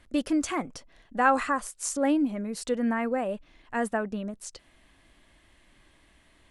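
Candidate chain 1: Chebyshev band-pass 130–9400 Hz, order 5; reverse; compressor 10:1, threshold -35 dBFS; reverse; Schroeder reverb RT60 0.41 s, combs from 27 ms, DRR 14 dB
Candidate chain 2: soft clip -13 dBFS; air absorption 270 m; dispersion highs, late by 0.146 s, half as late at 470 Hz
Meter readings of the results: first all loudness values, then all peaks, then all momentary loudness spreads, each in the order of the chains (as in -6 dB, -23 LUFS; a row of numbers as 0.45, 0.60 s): -39.5, -30.0 LUFS; -24.5, -13.0 dBFS; 7, 12 LU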